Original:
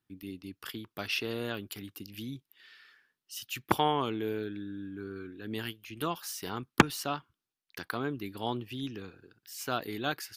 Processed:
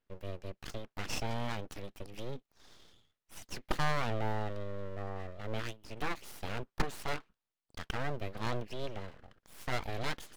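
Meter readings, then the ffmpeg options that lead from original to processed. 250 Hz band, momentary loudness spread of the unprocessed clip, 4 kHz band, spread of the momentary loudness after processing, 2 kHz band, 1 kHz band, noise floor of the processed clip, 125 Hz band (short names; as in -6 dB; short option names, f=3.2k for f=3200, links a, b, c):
-8.5 dB, 16 LU, -6.5 dB, 12 LU, -4.0 dB, -5.5 dB, under -85 dBFS, +0.5 dB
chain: -af "aeval=exprs='(tanh(17.8*val(0)+0.45)-tanh(0.45))/17.8':c=same,aemphasis=mode=reproduction:type=75kf,aeval=exprs='abs(val(0))':c=same,volume=4.5dB"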